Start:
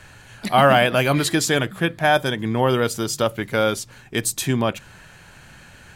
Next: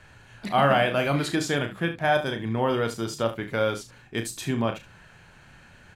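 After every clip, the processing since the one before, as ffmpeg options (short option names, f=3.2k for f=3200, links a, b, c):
-filter_complex "[0:a]lowpass=f=3.8k:p=1,asplit=2[a][b];[b]aecho=0:1:35|73:0.422|0.224[c];[a][c]amix=inputs=2:normalize=0,volume=-6dB"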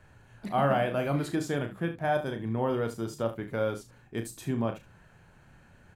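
-af "equalizer=f=3.6k:t=o:w=2.8:g=-9.5,volume=-3dB"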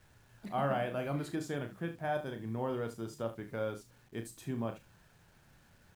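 -af "acrusher=bits=9:mix=0:aa=0.000001,volume=-7dB"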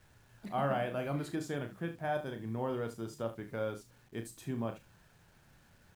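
-af anull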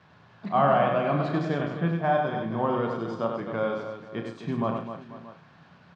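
-af "highpass=130,equalizer=f=170:t=q:w=4:g=10,equalizer=f=690:t=q:w=4:g=5,equalizer=f=1.1k:t=q:w=4:g=10,lowpass=f=4.5k:w=0.5412,lowpass=f=4.5k:w=1.3066,aecho=1:1:97|256|489|629:0.562|0.335|0.141|0.126,volume=6.5dB"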